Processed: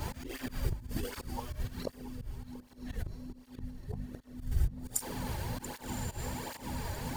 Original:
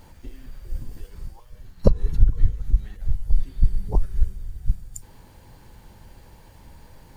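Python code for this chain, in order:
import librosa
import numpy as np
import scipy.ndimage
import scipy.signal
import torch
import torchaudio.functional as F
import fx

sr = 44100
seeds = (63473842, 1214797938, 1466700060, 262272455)

p1 = fx.level_steps(x, sr, step_db=13)
p2 = x + (p1 * 10.0 ** (-1.5 / 20.0))
p3 = fx.low_shelf(p2, sr, hz=100.0, db=9.5)
p4 = fx.gate_flip(p3, sr, shuts_db=-8.0, range_db=-30)
p5 = fx.echo_diffused(p4, sr, ms=1144, feedback_pct=40, wet_db=-15.0)
p6 = fx.over_compress(p5, sr, threshold_db=-21.0, ratio=-1.0)
p7 = fx.add_hum(p6, sr, base_hz=50, snr_db=11)
p8 = fx.low_shelf(p7, sr, hz=200.0, db=-7.5)
p9 = fx.hum_notches(p8, sr, base_hz=50, count=4)
p10 = fx.auto_swell(p9, sr, attack_ms=107.0)
p11 = p10 + fx.echo_single(p10, sr, ms=684, db=-17.0, dry=0)
p12 = fx.flanger_cancel(p11, sr, hz=1.3, depth_ms=4.4)
y = p12 * 10.0 ** (11.0 / 20.0)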